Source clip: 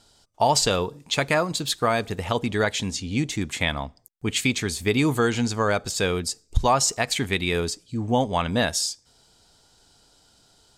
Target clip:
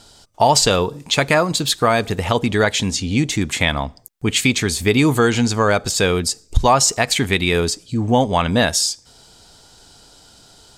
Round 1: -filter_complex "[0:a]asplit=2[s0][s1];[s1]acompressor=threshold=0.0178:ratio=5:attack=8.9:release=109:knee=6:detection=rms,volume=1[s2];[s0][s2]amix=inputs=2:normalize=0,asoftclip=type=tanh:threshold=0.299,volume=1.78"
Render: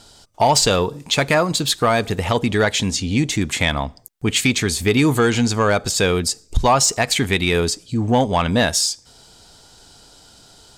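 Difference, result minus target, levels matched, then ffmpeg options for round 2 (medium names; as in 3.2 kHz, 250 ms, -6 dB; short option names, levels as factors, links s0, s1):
saturation: distortion +17 dB
-filter_complex "[0:a]asplit=2[s0][s1];[s1]acompressor=threshold=0.0178:ratio=5:attack=8.9:release=109:knee=6:detection=rms,volume=1[s2];[s0][s2]amix=inputs=2:normalize=0,asoftclip=type=tanh:threshold=0.944,volume=1.78"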